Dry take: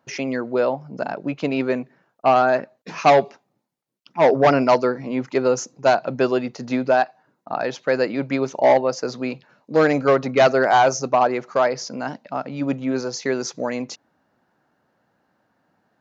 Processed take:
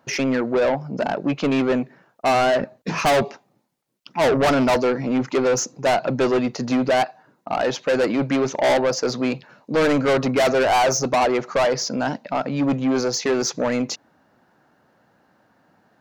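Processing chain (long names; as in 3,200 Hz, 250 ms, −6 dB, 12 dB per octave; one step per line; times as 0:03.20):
0:02.60–0:03.23: low-shelf EQ 260 Hz +10.5 dB
soft clipping −22 dBFS, distortion −5 dB
level +7 dB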